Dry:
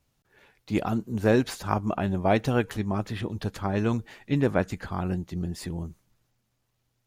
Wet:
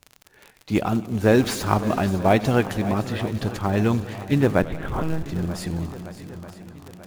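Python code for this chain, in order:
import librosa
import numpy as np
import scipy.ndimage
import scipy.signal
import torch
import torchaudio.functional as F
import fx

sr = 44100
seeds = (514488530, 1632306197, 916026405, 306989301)

p1 = fx.zero_step(x, sr, step_db=-35.0, at=(1.39, 2.04))
p2 = p1 + fx.echo_swing(p1, sr, ms=938, ratio=1.5, feedback_pct=49, wet_db=-15.0, dry=0)
p3 = fx.lpc_monotone(p2, sr, seeds[0], pitch_hz=160.0, order=10, at=(4.62, 5.26))
p4 = fx.dmg_crackle(p3, sr, seeds[1], per_s=48.0, level_db=-34.0)
p5 = fx.quant_float(p4, sr, bits=2)
p6 = p4 + (p5 * 10.0 ** (-6.0 / 20.0))
p7 = fx.echo_warbled(p6, sr, ms=91, feedback_pct=77, rate_hz=2.8, cents=124, wet_db=-19.0)
y = p7 * 10.0 ** (1.0 / 20.0)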